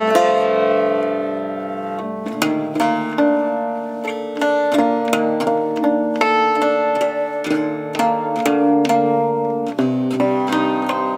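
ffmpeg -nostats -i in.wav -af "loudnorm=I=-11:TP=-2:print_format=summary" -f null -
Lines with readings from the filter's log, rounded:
Input Integrated:    -18.3 LUFS
Input True Peak:      -1.7 dBTP
Input LRA:             1.6 LU
Input Threshold:     -28.3 LUFS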